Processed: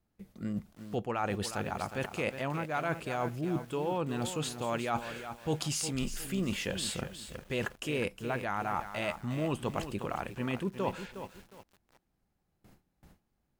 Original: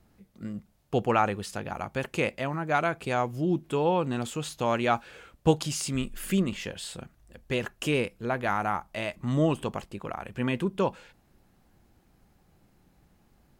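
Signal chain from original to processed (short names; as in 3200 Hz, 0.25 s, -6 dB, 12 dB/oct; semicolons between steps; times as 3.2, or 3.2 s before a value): gate with hold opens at -50 dBFS; reverse; compressor 5:1, threshold -36 dBFS, peak gain reduction 18.5 dB; reverse; lo-fi delay 0.361 s, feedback 35%, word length 9-bit, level -9.5 dB; gain +5 dB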